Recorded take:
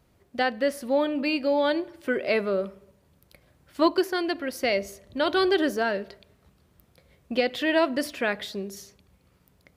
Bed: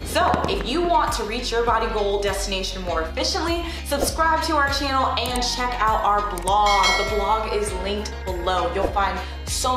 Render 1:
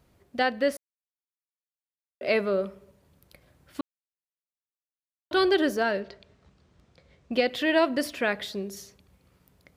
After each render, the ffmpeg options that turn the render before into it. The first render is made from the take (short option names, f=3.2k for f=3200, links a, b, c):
-filter_complex "[0:a]asettb=1/sr,asplit=3[a][b][c];[a]atrim=end=6.004[d];[b]atrim=start=6:end=7.33,asetpts=PTS-STARTPTS,afade=t=in:d=0.004:c=qsin,afade=t=out:st=1.326:d=0.004:c=qsin,lowpass=f=7.2k:w=0.5412,lowpass=f=7.2k:w=1.3066[e];[c]atrim=start=7.326[f];[d][e]acrossfade=d=0.004:c1=hsin:c2=qsin[g];[g][f]acrossfade=d=0.004:c1=qsin:c2=hsin,asplit=5[h][i][j][k][l];[h]atrim=end=0.77,asetpts=PTS-STARTPTS,afade=t=out:st=0.766:d=0.004:c=hsin[m];[i]atrim=start=0.77:end=2.21,asetpts=PTS-STARTPTS,volume=0[n];[j]atrim=start=2.21:end=3.81,asetpts=PTS-STARTPTS,afade=t=in:d=0.004:c=hsin,afade=t=out:st=1.596:d=0.004:c=hsin[o];[k]atrim=start=3.81:end=5.31,asetpts=PTS-STARTPTS,volume=0[p];[l]atrim=start=5.31,asetpts=PTS-STARTPTS,afade=t=in:d=0.004:c=hsin[q];[m][n][o][p][q]concat=n=5:v=0:a=1"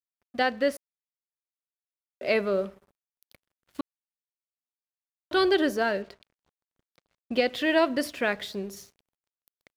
-af "aeval=exprs='sgn(val(0))*max(abs(val(0))-0.00224,0)':c=same"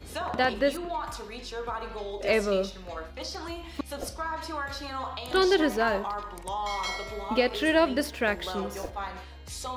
-filter_complex "[1:a]volume=-14dB[a];[0:a][a]amix=inputs=2:normalize=0"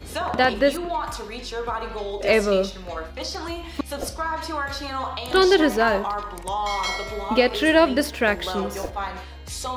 -af "volume=6dB"